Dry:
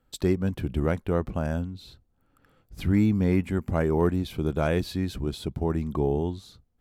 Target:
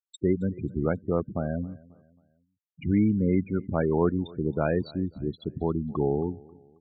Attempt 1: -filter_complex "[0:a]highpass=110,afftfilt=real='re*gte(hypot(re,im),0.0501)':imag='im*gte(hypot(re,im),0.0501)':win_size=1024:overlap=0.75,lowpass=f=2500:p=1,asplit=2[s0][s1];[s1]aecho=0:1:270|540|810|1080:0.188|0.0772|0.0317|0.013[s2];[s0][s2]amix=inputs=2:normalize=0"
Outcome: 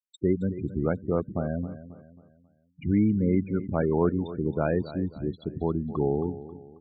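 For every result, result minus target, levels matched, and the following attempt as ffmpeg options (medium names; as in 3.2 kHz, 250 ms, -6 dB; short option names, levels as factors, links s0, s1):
8 kHz band -7.5 dB; echo-to-direct +8.5 dB
-filter_complex "[0:a]highpass=110,afftfilt=real='re*gte(hypot(re,im),0.0501)':imag='im*gte(hypot(re,im),0.0501)':win_size=1024:overlap=0.75,lowpass=f=9200:p=1,asplit=2[s0][s1];[s1]aecho=0:1:270|540|810|1080:0.188|0.0772|0.0317|0.013[s2];[s0][s2]amix=inputs=2:normalize=0"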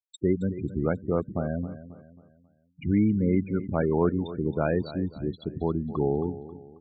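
echo-to-direct +8.5 dB
-filter_complex "[0:a]highpass=110,afftfilt=real='re*gte(hypot(re,im),0.0501)':imag='im*gte(hypot(re,im),0.0501)':win_size=1024:overlap=0.75,lowpass=f=9200:p=1,asplit=2[s0][s1];[s1]aecho=0:1:270|540|810:0.0708|0.029|0.0119[s2];[s0][s2]amix=inputs=2:normalize=0"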